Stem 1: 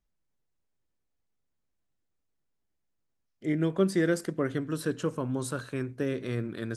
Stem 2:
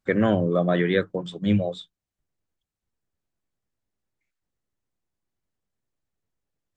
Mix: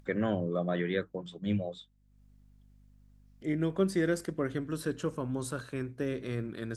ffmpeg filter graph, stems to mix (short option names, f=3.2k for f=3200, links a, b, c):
-filter_complex "[0:a]volume=-3dB,asplit=2[a][b];[1:a]aeval=exprs='val(0)+0.00112*(sin(2*PI*50*n/s)+sin(2*PI*2*50*n/s)/2+sin(2*PI*3*50*n/s)/3+sin(2*PI*4*50*n/s)/4+sin(2*PI*5*50*n/s)/5)':c=same,volume=2.5dB[c];[b]apad=whole_len=298448[d];[c][d]sidechaingate=range=-12dB:threshold=-37dB:ratio=16:detection=peak[e];[a][e]amix=inputs=2:normalize=0,acompressor=mode=upward:threshold=-49dB:ratio=2.5"